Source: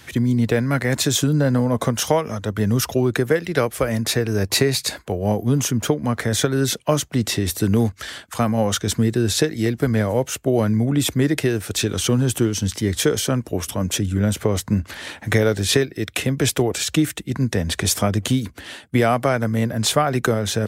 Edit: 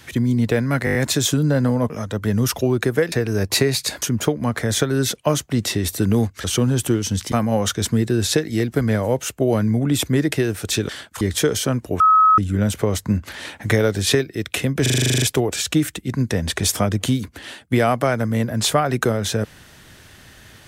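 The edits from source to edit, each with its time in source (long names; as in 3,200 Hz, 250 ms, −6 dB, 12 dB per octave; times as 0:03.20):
0:00.85: stutter 0.02 s, 6 plays
0:01.80–0:02.23: remove
0:03.45–0:04.12: remove
0:05.02–0:05.64: remove
0:08.06–0:08.38: swap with 0:11.95–0:12.83
0:13.62–0:14.00: beep over 1,280 Hz −9.5 dBFS
0:16.44: stutter 0.04 s, 11 plays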